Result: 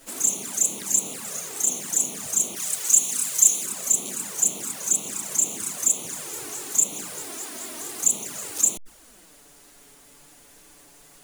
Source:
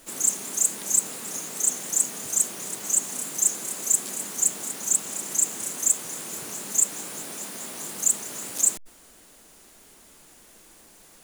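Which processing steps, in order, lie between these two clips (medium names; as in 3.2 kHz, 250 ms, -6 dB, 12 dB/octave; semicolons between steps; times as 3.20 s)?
touch-sensitive flanger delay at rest 8.2 ms, full sweep at -22.5 dBFS; 2.56–3.65 s: tilt shelf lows -5.5 dB, about 1.4 kHz; trim +4 dB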